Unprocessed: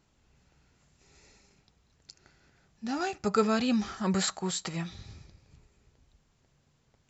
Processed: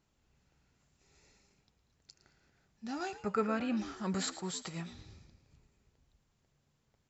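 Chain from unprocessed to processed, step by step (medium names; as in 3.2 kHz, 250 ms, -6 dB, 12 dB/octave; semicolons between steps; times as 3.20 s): 3.22–3.77 s: resonant high shelf 3 kHz -9 dB, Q 1.5; on a send: frequency-shifting echo 111 ms, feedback 35%, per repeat +71 Hz, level -14.5 dB; on the sum: trim -7 dB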